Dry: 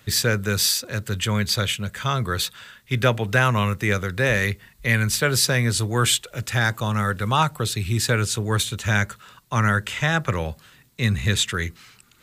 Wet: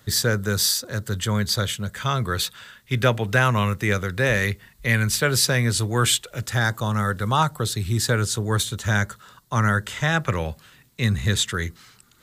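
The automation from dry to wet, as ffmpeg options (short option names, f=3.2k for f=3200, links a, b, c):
-af "asetnsamples=n=441:p=0,asendcmd='1.95 equalizer g -2;6.46 equalizer g -9.5;10.06 equalizer g 0;11.04 equalizer g -7.5',equalizer=f=2.5k:t=o:w=0.44:g=-11"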